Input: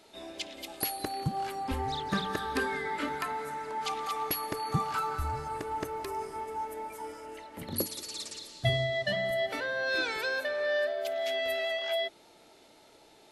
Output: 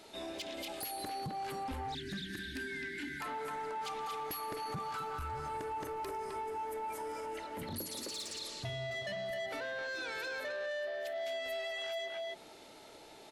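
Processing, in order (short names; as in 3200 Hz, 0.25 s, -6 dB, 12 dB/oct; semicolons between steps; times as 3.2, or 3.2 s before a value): speakerphone echo 0.26 s, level -6 dB; compressor 3:1, threshold -35 dBFS, peak gain reduction 10 dB; spectral delete 1.95–3.21, 400–1400 Hz; soft clip -33 dBFS, distortion -16 dB; limiter -37.5 dBFS, peak gain reduction 4.5 dB; gain +3 dB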